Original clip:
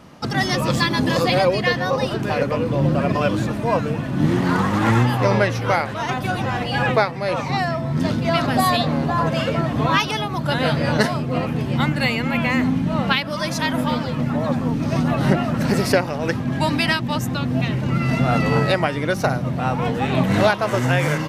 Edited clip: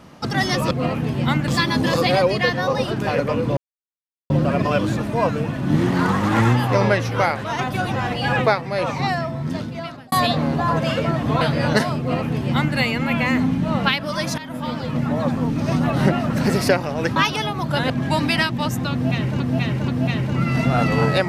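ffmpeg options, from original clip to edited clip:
-filter_complex "[0:a]asplit=11[a][b][c][d][e][f][g][h][i][j][k];[a]atrim=end=0.712[l];[b]atrim=start=11.228:end=12.002[m];[c]atrim=start=0.708:end=2.8,asetpts=PTS-STARTPTS,afade=t=out:st=2.088:d=0.004:c=hsin,apad=pad_dur=0.73[n];[d]atrim=start=2.8:end=8.62,asetpts=PTS-STARTPTS,afade=t=in:d=0.004:c=hsin,afade=t=out:st=4.76:d=1.06[o];[e]atrim=start=8.62:end=9.912,asetpts=PTS-STARTPTS,afade=t=in:d=0.004:c=hsin[p];[f]atrim=start=10.648:end=13.62,asetpts=PTS-STARTPTS,afade=t=out:st=2.968:d=0.004:c=hsin:silence=0.149624[q];[g]atrim=start=13.62:end=16.402,asetpts=PTS-STARTPTS,afade=t=in:d=0.6:silence=0.149624[r];[h]atrim=start=9.908:end=10.652[s];[i]atrim=start=16.398:end=17.902[t];[j]atrim=start=17.418:end=17.902[u];[k]atrim=start=17.418[v];[l][m]acrossfade=d=0.004:c1=hsin:c2=hsin[w];[n][o][p]concat=n=3:v=0:a=1[x];[w][x]acrossfade=d=0.004:c1=hsin:c2=hsin[y];[q][r]concat=n=2:v=0:a=1[z];[y][z]acrossfade=d=0.004:c1=hsin:c2=hsin[aa];[aa][s]acrossfade=d=0.004:c1=hsin:c2=hsin[ab];[ab][t]acrossfade=d=0.004:c1=hsin:c2=hsin[ac];[ac][u]acrossfade=d=0.004:c1=hsin:c2=hsin[ad];[ad][v]acrossfade=d=0.004:c1=hsin:c2=hsin"

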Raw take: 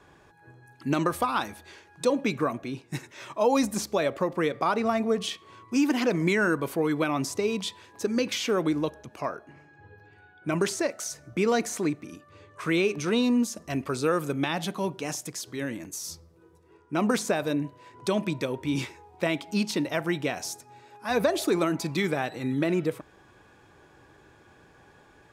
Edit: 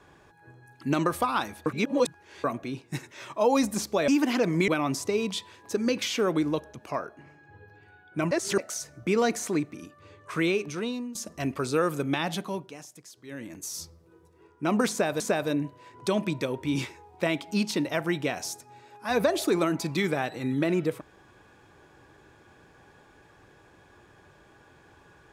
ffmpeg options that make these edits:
-filter_complex "[0:a]asplit=11[a][b][c][d][e][f][g][h][i][j][k];[a]atrim=end=1.662[l];[b]atrim=start=1.658:end=2.442,asetpts=PTS-STARTPTS,areverse[m];[c]atrim=start=2.438:end=4.082[n];[d]atrim=start=5.748:end=6.352[o];[e]atrim=start=6.978:end=10.612[p];[f]atrim=start=10.608:end=10.882,asetpts=PTS-STARTPTS,areverse[q];[g]atrim=start=10.878:end=13.45,asetpts=PTS-STARTPTS,afade=t=out:st=1.792:d=0.78:silence=0.11885[r];[h]atrim=start=13.45:end=15.09,asetpts=PTS-STARTPTS,afade=t=in:d=0.004:c=hsin:silence=0.11885,afade=t=out:st=1.18:d=0.46:silence=0.223872[s];[i]atrim=start=15.09:end=15.53,asetpts=PTS-STARTPTS,volume=-13dB[t];[j]atrim=start=15.53:end=17.502,asetpts=PTS-STARTPTS,afade=t=in:d=0.46:silence=0.223872[u];[k]atrim=start=17.198[v];[l][m]acrossfade=d=0.004:c1=hsin:c2=hsin[w];[w][n]acrossfade=d=0.004:c1=hsin:c2=hsin[x];[x][o]acrossfade=d=0.004:c1=hsin:c2=hsin[y];[y][p]acrossfade=d=0.004:c1=hsin:c2=hsin[z];[z][q]acrossfade=d=0.004:c1=hsin:c2=hsin[aa];[r][s][t][u]concat=n=4:v=0:a=1[ab];[aa][ab]acrossfade=d=0.004:c1=hsin:c2=hsin[ac];[ac][v]acrossfade=d=0.004:c1=hsin:c2=hsin"

